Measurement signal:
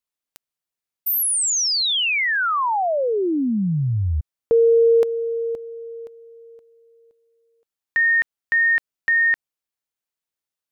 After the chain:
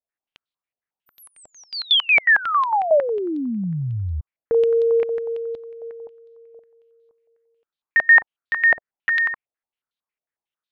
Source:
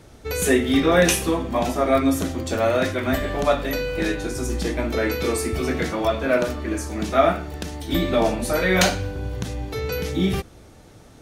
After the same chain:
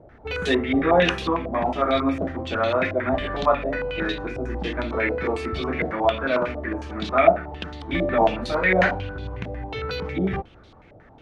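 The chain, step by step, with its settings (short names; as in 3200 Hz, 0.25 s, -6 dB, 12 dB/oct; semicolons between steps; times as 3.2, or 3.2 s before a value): stepped low-pass 11 Hz 660–3800 Hz; gain -4 dB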